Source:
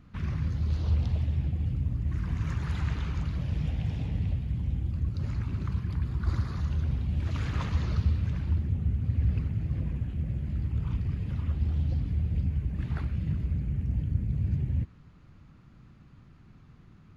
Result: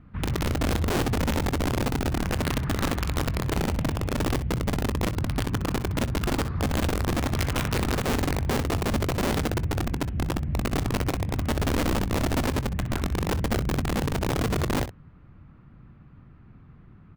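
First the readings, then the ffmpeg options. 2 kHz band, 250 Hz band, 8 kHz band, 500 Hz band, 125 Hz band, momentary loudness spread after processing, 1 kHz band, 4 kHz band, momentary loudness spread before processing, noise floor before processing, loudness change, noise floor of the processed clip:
+15.0 dB, +9.5 dB, n/a, +20.0 dB, 0.0 dB, 3 LU, +17.5 dB, +17.0 dB, 4 LU, -54 dBFS, +3.5 dB, -51 dBFS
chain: -filter_complex "[0:a]lowpass=2.1k,aeval=exprs='(mod(15*val(0)+1,2)-1)/15':c=same,asplit=2[a][b];[b]aecho=0:1:22|63:0.141|0.237[c];[a][c]amix=inputs=2:normalize=0,volume=3.5dB"

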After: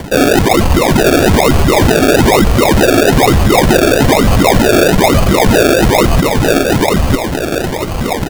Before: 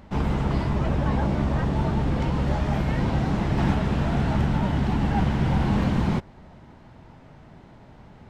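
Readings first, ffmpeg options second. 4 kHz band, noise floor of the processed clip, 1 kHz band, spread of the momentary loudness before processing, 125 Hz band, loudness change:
+24.0 dB, -18 dBFS, +17.0 dB, 2 LU, +9.5 dB, +14.5 dB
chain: -filter_complex "[0:a]areverse,acompressor=threshold=-34dB:ratio=12,areverse,lowpass=f=3.2k:t=q:w=0.5098,lowpass=f=3.2k:t=q:w=0.6013,lowpass=f=3.2k:t=q:w=0.9,lowpass=f=3.2k:t=q:w=2.563,afreqshift=-3800,highpass=f=870:w=0.5412,highpass=f=870:w=1.3066,asplit=2[a][b];[b]aecho=0:1:955:0.596[c];[a][c]amix=inputs=2:normalize=0,acrusher=samples=34:mix=1:aa=0.000001:lfo=1:lforange=20.4:lforate=1.1,alimiter=level_in=31dB:limit=-1dB:release=50:level=0:latency=1,volume=-1dB"

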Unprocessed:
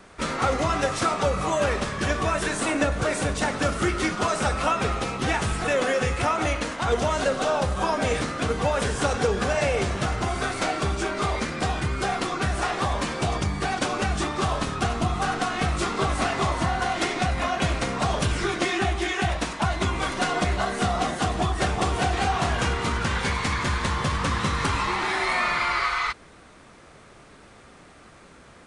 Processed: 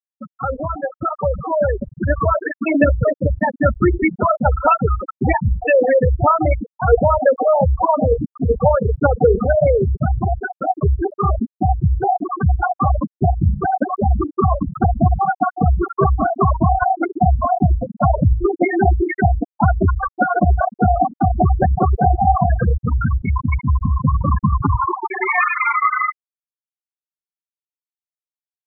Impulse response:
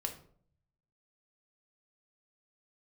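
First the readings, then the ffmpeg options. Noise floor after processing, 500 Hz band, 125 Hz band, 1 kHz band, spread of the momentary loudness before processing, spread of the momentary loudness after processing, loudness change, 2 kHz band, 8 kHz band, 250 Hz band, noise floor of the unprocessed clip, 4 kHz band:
under -85 dBFS, +8.5 dB, +10.5 dB, +7.0 dB, 3 LU, 5 LU, +7.0 dB, +1.5 dB, under -40 dB, +8.0 dB, -50 dBFS, under -40 dB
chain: -af "afftfilt=real='re*gte(hypot(re,im),0.251)':imag='im*gte(hypot(re,im),0.251)':win_size=1024:overlap=0.75,dynaudnorm=f=250:g=13:m=10.5dB,volume=2dB"

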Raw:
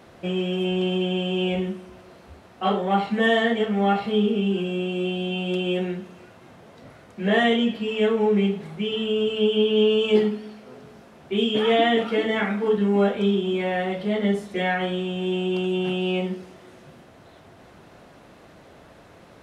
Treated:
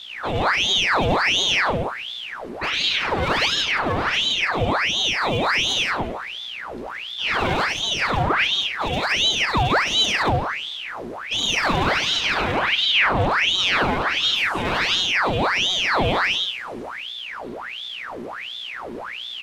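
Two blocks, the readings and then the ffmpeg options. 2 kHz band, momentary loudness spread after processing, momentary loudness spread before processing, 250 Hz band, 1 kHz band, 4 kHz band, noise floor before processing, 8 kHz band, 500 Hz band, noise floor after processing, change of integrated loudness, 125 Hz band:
+9.5 dB, 14 LU, 8 LU, -7.0 dB, +6.5 dB, +11.0 dB, -50 dBFS, n/a, -5.0 dB, -33 dBFS, +3.0 dB, +1.5 dB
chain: -af "alimiter=limit=-16.5dB:level=0:latency=1:release=99,aeval=exprs='val(0)+0.0112*(sin(2*PI*60*n/s)+sin(2*PI*2*60*n/s)/2+sin(2*PI*3*60*n/s)/3+sin(2*PI*4*60*n/s)/4+sin(2*PI*5*60*n/s)/5)':c=same,asoftclip=type=hard:threshold=-22dB,aecho=1:1:99.13|169.1:0.708|0.794,aeval=exprs='val(0)*sin(2*PI*1900*n/s+1900*0.85/1.4*sin(2*PI*1.4*n/s))':c=same,volume=4.5dB"

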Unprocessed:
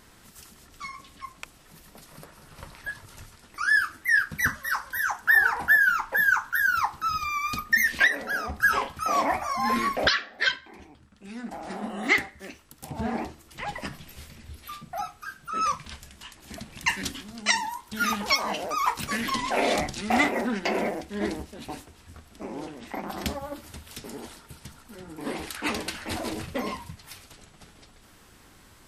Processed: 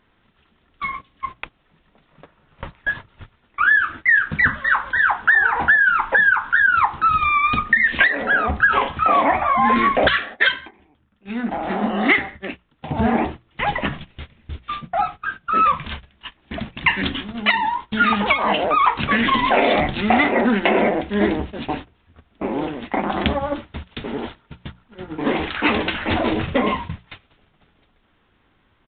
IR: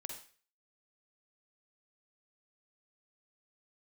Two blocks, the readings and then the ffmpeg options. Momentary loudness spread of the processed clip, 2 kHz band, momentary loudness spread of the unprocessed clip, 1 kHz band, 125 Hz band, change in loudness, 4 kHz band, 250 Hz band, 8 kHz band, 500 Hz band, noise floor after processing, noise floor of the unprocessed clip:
16 LU, +7.0 dB, 21 LU, +9.5 dB, +10.5 dB, +7.0 dB, +5.0 dB, +10.5 dB, under -40 dB, +10.0 dB, -62 dBFS, -55 dBFS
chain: -af "agate=range=-19dB:threshold=-42dB:ratio=16:detection=peak,apsyclip=12.5dB,acompressor=threshold=-12dB:ratio=8,bandreject=f=60:t=h:w=6,bandreject=f=120:t=h:w=6,bandreject=f=180:t=h:w=6,aresample=8000,aresample=44100"

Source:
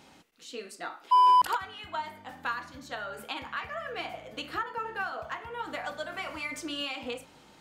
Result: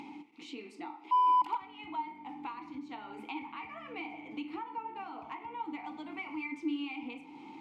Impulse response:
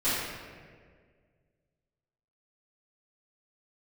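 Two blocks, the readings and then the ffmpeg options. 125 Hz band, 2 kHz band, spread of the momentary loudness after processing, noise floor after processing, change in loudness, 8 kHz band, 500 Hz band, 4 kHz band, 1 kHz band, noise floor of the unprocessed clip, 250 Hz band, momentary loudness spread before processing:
-10.5 dB, -9.0 dB, 17 LU, -52 dBFS, -6.0 dB, under -15 dB, -10.5 dB, -12.0 dB, -5.5 dB, -57 dBFS, +5.0 dB, 18 LU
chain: -filter_complex "[0:a]asplit=3[a][b][c];[a]bandpass=f=300:t=q:w=8,volume=0dB[d];[b]bandpass=f=870:t=q:w=8,volume=-6dB[e];[c]bandpass=f=2.24k:t=q:w=8,volume=-9dB[f];[d][e][f]amix=inputs=3:normalize=0,acompressor=mode=upward:threshold=-43dB:ratio=2.5,asplit=2[g][h];[1:a]atrim=start_sample=2205,afade=t=out:st=0.33:d=0.01,atrim=end_sample=14994[i];[h][i]afir=irnorm=-1:irlink=0,volume=-27dB[j];[g][j]amix=inputs=2:normalize=0,volume=6.5dB"

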